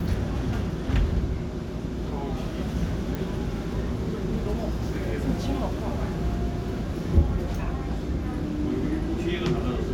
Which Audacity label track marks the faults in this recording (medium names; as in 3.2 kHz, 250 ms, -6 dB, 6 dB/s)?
3.150000	3.150000	pop